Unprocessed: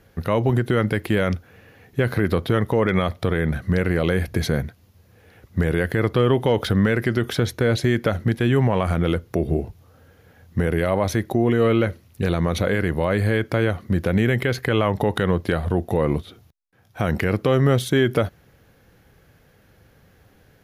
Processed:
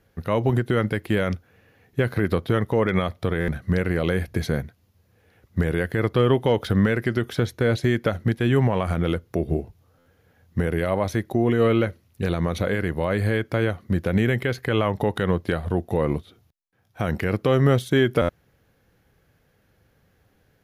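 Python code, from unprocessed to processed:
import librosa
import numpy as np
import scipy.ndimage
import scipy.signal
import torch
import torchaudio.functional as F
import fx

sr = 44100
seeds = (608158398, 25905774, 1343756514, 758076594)

y = fx.buffer_glitch(x, sr, at_s=(3.4, 9.98, 18.21), block=512, repeats=6)
y = fx.upward_expand(y, sr, threshold_db=-31.0, expansion=1.5)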